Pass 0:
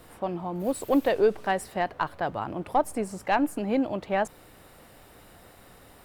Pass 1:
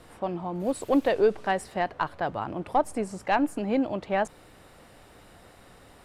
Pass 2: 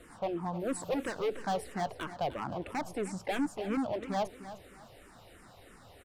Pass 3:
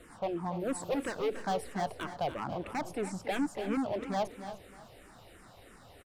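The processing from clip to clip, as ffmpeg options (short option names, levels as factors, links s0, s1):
-af "lowpass=9300"
-filter_complex "[0:a]volume=21.1,asoftclip=hard,volume=0.0473,aecho=1:1:305|610|915:0.224|0.0672|0.0201,asplit=2[s0][s1];[s1]afreqshift=-3[s2];[s0][s2]amix=inputs=2:normalize=1"
-af "aecho=1:1:280:0.237"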